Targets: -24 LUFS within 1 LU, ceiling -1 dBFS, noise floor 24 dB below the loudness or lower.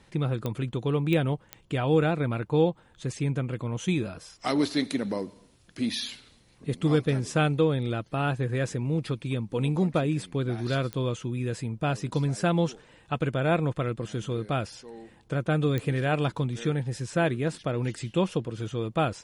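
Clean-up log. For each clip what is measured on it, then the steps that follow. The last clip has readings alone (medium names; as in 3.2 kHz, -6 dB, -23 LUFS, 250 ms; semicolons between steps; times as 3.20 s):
clicks found 5; loudness -28.5 LUFS; peak level -12.0 dBFS; loudness target -24.0 LUFS
-> de-click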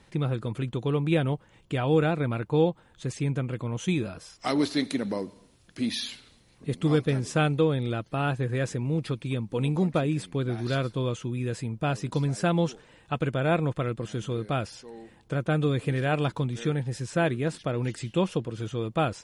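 clicks found 0; loudness -28.5 LUFS; peak level -12.0 dBFS; loudness target -24.0 LUFS
-> trim +4.5 dB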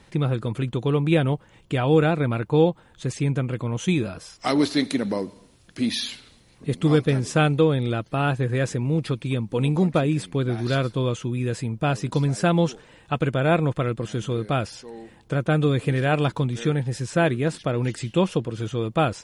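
loudness -24.0 LUFS; peak level -7.5 dBFS; noise floor -55 dBFS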